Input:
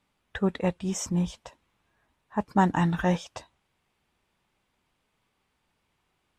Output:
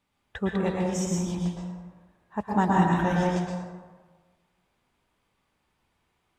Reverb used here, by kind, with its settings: plate-style reverb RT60 1.4 s, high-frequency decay 0.45×, pre-delay 0.1 s, DRR -2.5 dB; gain -3 dB

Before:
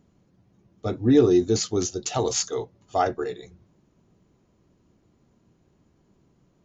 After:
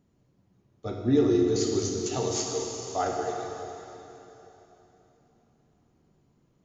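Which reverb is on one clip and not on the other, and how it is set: plate-style reverb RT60 3.4 s, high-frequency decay 1×, DRR -0.5 dB; gain -7 dB

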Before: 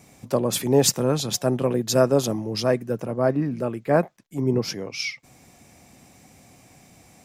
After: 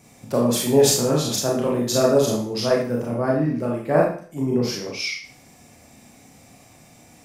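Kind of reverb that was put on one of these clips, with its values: Schroeder reverb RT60 0.47 s, combs from 26 ms, DRR -2.5 dB; gain -2 dB

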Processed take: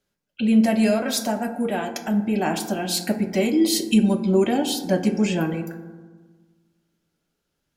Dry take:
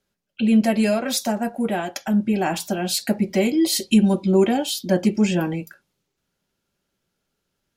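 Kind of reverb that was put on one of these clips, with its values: FDN reverb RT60 1.4 s, low-frequency decay 1.35×, high-frequency decay 0.35×, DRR 7 dB; gain -1.5 dB

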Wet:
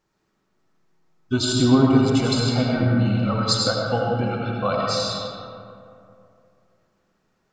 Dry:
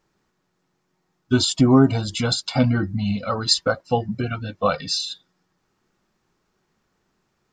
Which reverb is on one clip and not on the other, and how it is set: digital reverb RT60 2.6 s, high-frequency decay 0.45×, pre-delay 45 ms, DRR -2.5 dB; gain -4 dB

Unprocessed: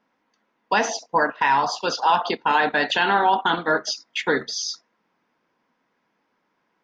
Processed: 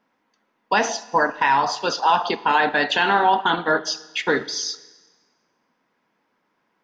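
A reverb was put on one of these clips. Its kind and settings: Schroeder reverb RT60 1.3 s, combs from 28 ms, DRR 16.5 dB; gain +1 dB

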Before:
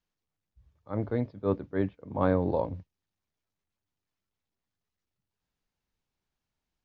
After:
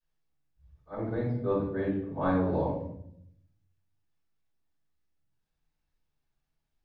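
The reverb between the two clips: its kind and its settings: shoebox room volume 150 m³, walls mixed, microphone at 5.2 m; gain -15.5 dB

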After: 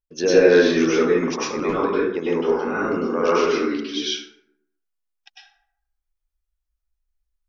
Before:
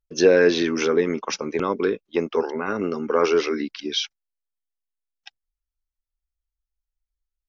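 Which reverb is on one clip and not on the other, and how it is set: plate-style reverb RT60 0.73 s, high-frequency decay 0.5×, pre-delay 90 ms, DRR -8 dB; gain -6 dB

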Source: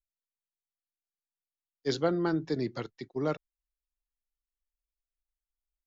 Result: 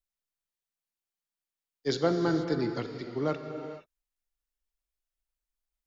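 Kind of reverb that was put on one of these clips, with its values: non-linear reverb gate 0.5 s flat, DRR 5.5 dB; gain +1 dB

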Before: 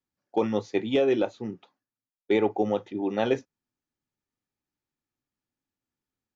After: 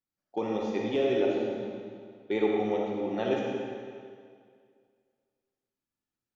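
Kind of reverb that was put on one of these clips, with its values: digital reverb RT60 2.1 s, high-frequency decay 0.9×, pre-delay 15 ms, DRR -2.5 dB; gain -7 dB

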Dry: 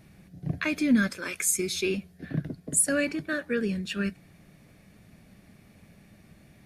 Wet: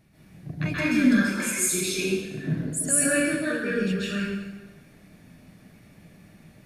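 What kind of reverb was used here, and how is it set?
plate-style reverb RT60 1.2 s, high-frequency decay 0.85×, pre-delay 0.12 s, DRR -9.5 dB; gain -6.5 dB

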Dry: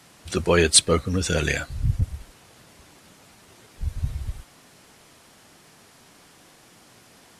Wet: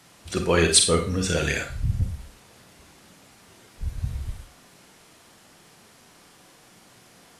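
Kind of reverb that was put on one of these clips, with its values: Schroeder reverb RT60 0.36 s, combs from 32 ms, DRR 4 dB; gain -2 dB

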